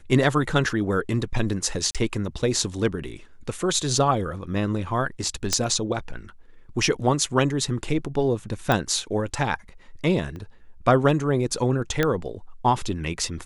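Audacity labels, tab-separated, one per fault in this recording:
1.910000	1.950000	gap 37 ms
5.530000	5.530000	pop -6 dBFS
8.720000	8.720000	pop -9 dBFS
10.360000	10.360000	pop -26 dBFS
12.030000	12.030000	pop -8 dBFS

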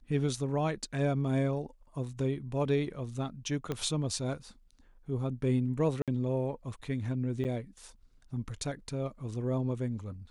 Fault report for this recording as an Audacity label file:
3.720000	3.720000	pop -20 dBFS
6.020000	6.080000	gap 57 ms
7.440000	7.450000	gap 8.5 ms

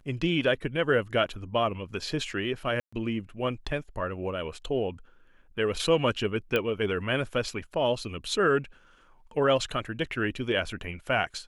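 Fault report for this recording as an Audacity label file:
2.800000	2.920000	gap 0.125 s
6.560000	6.560000	pop -14 dBFS

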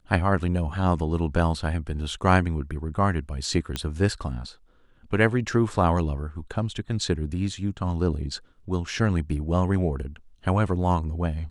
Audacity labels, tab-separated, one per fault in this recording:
3.760000	3.760000	pop -13 dBFS

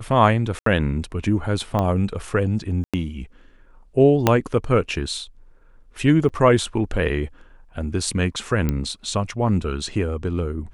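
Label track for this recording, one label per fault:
0.590000	0.660000	gap 73 ms
1.790000	1.790000	pop -11 dBFS
2.840000	2.940000	gap 96 ms
4.270000	4.270000	pop -1 dBFS
6.290000	6.300000	gap 7.1 ms
8.690000	8.690000	pop -10 dBFS

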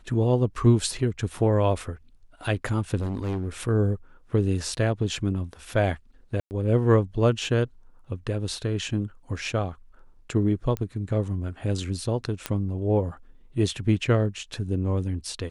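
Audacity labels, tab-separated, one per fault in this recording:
2.980000	3.480000	clipped -24.5 dBFS
6.400000	6.510000	gap 0.109 s
10.770000	10.770000	pop -16 dBFS
12.460000	12.460000	pop -11 dBFS

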